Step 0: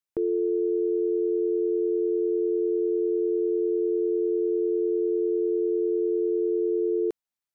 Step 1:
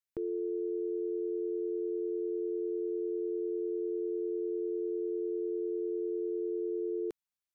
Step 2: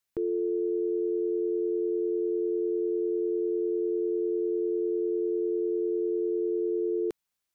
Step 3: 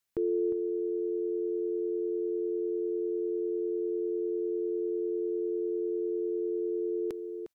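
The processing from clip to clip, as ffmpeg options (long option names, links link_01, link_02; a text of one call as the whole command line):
ffmpeg -i in.wav -af "equalizer=frequency=500:width=0.56:gain=-6.5,volume=-3.5dB" out.wav
ffmpeg -i in.wav -af "alimiter=level_in=7dB:limit=-24dB:level=0:latency=1:release=13,volume=-7dB,volume=8.5dB" out.wav
ffmpeg -i in.wav -filter_complex "[0:a]asplit=2[link_01][link_02];[link_02]adelay=355.7,volume=-10dB,highshelf=frequency=4000:gain=-8[link_03];[link_01][link_03]amix=inputs=2:normalize=0" out.wav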